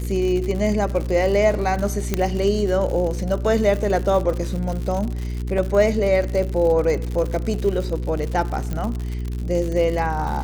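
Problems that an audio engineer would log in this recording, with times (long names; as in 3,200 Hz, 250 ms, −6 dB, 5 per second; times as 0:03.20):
surface crackle 110 per second −26 dBFS
mains hum 60 Hz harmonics 7 −26 dBFS
0:02.14: click −6 dBFS
0:05.58: drop-out 3.8 ms
0:08.73: click −14 dBFS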